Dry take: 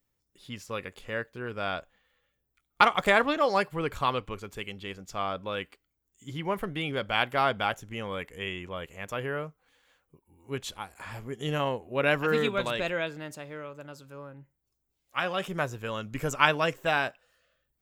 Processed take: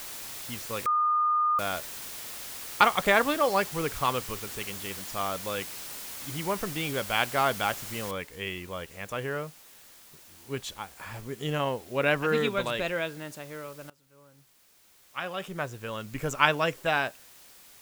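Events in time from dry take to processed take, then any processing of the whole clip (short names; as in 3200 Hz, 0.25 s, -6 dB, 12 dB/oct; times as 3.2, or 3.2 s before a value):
0.86–1.59 bleep 1220 Hz -21.5 dBFS
8.11 noise floor step -40 dB -53 dB
13.9–16.44 fade in, from -20.5 dB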